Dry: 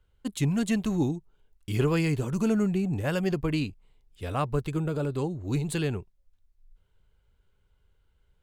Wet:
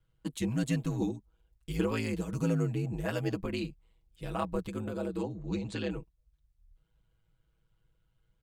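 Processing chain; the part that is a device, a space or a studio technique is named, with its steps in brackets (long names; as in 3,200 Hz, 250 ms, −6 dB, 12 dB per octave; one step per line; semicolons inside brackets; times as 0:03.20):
0:05.22–0:05.90: low-pass filter 6,500 Hz 24 dB per octave
ring-modulated robot voice (ring modulation 55 Hz; comb filter 6.2 ms, depth 77%)
level −4 dB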